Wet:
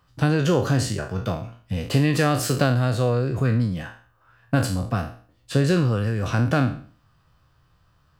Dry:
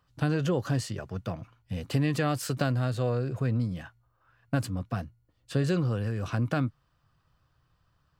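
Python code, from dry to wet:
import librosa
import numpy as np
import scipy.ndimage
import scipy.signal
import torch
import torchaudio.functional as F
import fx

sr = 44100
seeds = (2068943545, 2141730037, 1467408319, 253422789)

y = fx.spec_trails(x, sr, decay_s=0.45)
y = F.gain(torch.from_numpy(y), 6.5).numpy()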